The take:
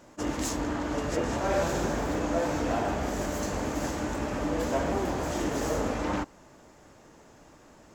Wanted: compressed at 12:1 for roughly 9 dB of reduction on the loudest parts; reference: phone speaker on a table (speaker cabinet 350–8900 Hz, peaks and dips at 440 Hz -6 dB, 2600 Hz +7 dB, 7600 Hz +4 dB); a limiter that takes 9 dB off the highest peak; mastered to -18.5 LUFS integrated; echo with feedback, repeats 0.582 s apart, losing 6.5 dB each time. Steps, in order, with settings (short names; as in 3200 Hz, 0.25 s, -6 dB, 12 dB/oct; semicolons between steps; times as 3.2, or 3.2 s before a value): compressor 12:1, threshold -32 dBFS; limiter -32.5 dBFS; speaker cabinet 350–8900 Hz, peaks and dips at 440 Hz -6 dB, 2600 Hz +7 dB, 7600 Hz +4 dB; feedback echo 0.582 s, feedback 47%, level -6.5 dB; gain +25 dB